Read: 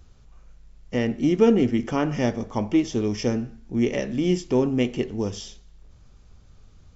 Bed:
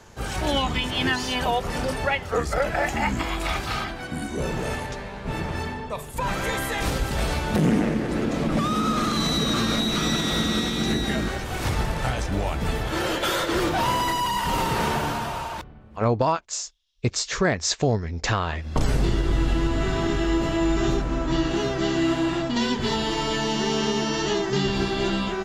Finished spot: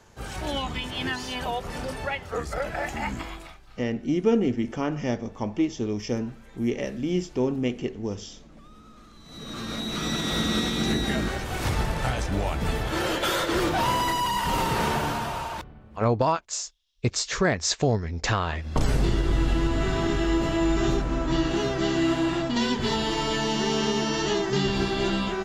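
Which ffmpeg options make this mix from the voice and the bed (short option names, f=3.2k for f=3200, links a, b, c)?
-filter_complex "[0:a]adelay=2850,volume=-4dB[a];[1:a]volume=21dB,afade=t=out:st=3.12:d=0.45:silence=0.0794328,afade=t=in:st=9.25:d=1.31:silence=0.0446684[b];[a][b]amix=inputs=2:normalize=0"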